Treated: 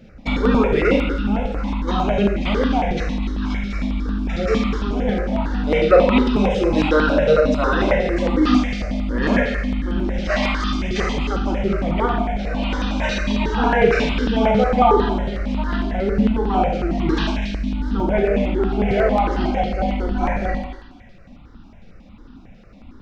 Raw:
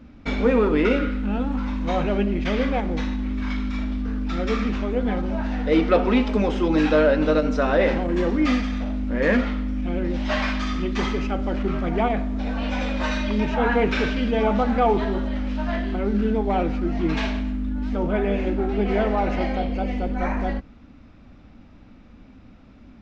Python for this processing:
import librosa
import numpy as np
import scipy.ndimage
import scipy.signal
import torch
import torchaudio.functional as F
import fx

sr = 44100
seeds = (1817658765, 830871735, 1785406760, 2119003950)

y = fx.dereverb_blind(x, sr, rt60_s=0.82)
y = fx.echo_wet_highpass(y, sr, ms=250, feedback_pct=32, hz=2200.0, wet_db=-7.5)
y = fx.rev_schroeder(y, sr, rt60_s=0.91, comb_ms=32, drr_db=0.5)
y = fx.phaser_held(y, sr, hz=11.0, low_hz=280.0, high_hz=2200.0)
y = F.gain(torch.from_numpy(y), 6.0).numpy()